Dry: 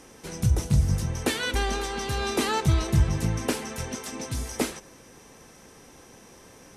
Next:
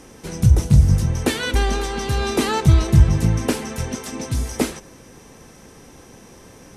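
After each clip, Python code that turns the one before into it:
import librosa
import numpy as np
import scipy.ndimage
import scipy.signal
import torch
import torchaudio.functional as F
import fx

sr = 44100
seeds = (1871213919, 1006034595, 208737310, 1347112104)

y = fx.low_shelf(x, sr, hz=330.0, db=6.0)
y = F.gain(torch.from_numpy(y), 3.5).numpy()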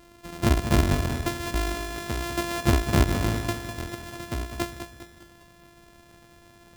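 y = np.r_[np.sort(x[:len(x) // 128 * 128].reshape(-1, 128), axis=1).ravel(), x[len(x) // 128 * 128:]]
y = fx.echo_feedback(y, sr, ms=202, feedback_pct=45, wet_db=-9)
y = F.gain(torch.from_numpy(y), -8.5).numpy()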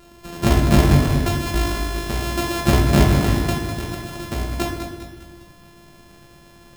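y = fx.room_shoebox(x, sr, seeds[0], volume_m3=350.0, walls='mixed', distance_m=1.2)
y = F.gain(torch.from_numpy(y), 3.5).numpy()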